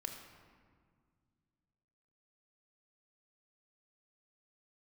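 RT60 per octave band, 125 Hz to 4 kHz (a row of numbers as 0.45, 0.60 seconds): 3.0, 2.8, 1.9, 1.8, 1.5, 1.1 seconds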